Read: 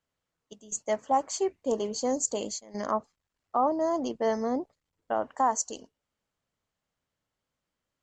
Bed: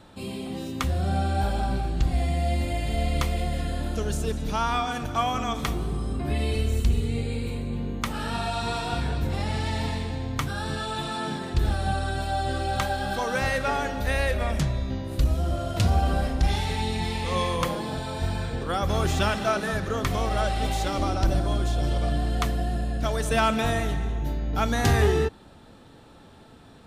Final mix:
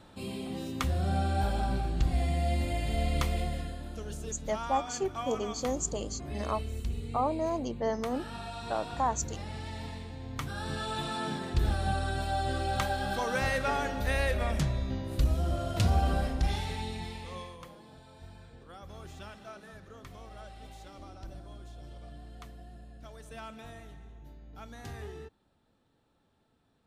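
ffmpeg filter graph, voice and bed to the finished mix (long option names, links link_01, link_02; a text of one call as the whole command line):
ffmpeg -i stem1.wav -i stem2.wav -filter_complex "[0:a]adelay=3600,volume=-4dB[link_01];[1:a]volume=4dB,afade=type=out:start_time=3.38:duration=0.4:silence=0.398107,afade=type=in:start_time=10.16:duration=0.75:silence=0.398107,afade=type=out:start_time=16.08:duration=1.5:silence=0.125893[link_02];[link_01][link_02]amix=inputs=2:normalize=0" out.wav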